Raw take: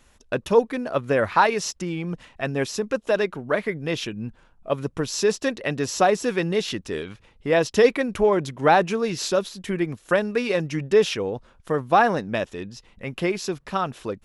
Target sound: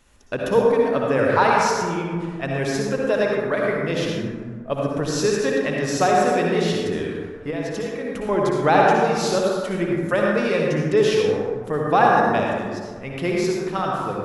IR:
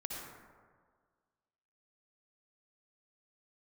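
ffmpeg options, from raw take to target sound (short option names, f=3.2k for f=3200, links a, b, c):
-filter_complex "[0:a]asettb=1/sr,asplit=3[a][b][c];[a]atrim=end=7.504[d];[b]atrim=start=7.5:end=8.29,asetpts=PTS-STARTPTS,afade=t=in:d=0.004:c=qsin,afade=t=out:st=0.786:d=0.004:c=qsin,acompressor=threshold=-28dB:ratio=6[e];[c]atrim=start=8.286[f];[d][e]acrossfade=d=0.004:c1=hsin:c2=qsin[g];[g][f]acrossfade=d=0.004:c1=qsin:c2=hsin[h];[1:a]atrim=start_sample=2205[i];[h][i]afir=irnorm=-1:irlink=0,volume=2.5dB"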